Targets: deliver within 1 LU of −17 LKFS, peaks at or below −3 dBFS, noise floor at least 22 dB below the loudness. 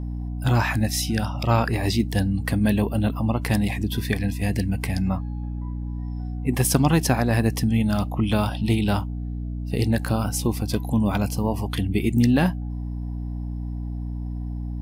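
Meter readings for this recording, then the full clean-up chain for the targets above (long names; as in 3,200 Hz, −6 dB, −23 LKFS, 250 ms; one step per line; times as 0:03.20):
mains hum 60 Hz; hum harmonics up to 300 Hz; level of the hum −27 dBFS; integrated loudness −24.0 LKFS; sample peak −5.0 dBFS; target loudness −17.0 LKFS
→ mains-hum notches 60/120/180/240/300 Hz
level +7 dB
brickwall limiter −3 dBFS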